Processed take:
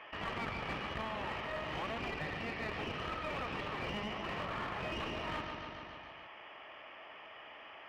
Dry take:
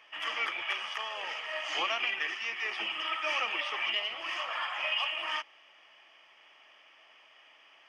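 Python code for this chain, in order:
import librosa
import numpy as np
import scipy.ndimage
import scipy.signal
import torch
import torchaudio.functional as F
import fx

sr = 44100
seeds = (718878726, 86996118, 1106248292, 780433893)

p1 = fx.cheby_harmonics(x, sr, harmonics=(6,), levels_db=(-10,), full_scale_db=-18.0)
p2 = fx.spacing_loss(p1, sr, db_at_10k=43)
p3 = p2 + fx.echo_feedback(p2, sr, ms=143, feedback_pct=57, wet_db=-11.0, dry=0)
p4 = fx.rider(p3, sr, range_db=10, speed_s=0.5)
p5 = scipy.signal.sosfilt(scipy.signal.butter(2, 50.0, 'highpass', fs=sr, output='sos'), p4)
p6 = 10.0 ** (-36.0 / 20.0) * (np.abs((p5 / 10.0 ** (-36.0 / 20.0) + 3.0) % 4.0 - 2.0) - 1.0)
p7 = p5 + (p6 * librosa.db_to_amplitude(-11.0))
p8 = fx.env_flatten(p7, sr, amount_pct=50)
y = p8 * librosa.db_to_amplitude(-4.0)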